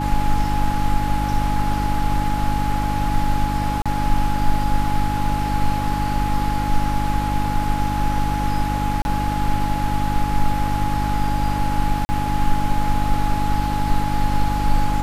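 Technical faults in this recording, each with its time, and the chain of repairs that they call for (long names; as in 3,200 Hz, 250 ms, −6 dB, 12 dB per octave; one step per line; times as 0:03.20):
mains hum 50 Hz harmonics 6 −24 dBFS
whistle 840 Hz −24 dBFS
0:03.82–0:03.86: drop-out 36 ms
0:09.02–0:09.05: drop-out 31 ms
0:12.05–0:12.09: drop-out 40 ms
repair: notch filter 840 Hz, Q 30
hum removal 50 Hz, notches 6
repair the gap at 0:03.82, 36 ms
repair the gap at 0:09.02, 31 ms
repair the gap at 0:12.05, 40 ms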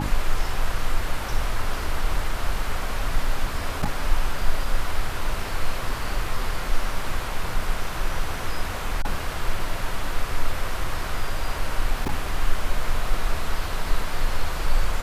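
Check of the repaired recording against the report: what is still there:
none of them is left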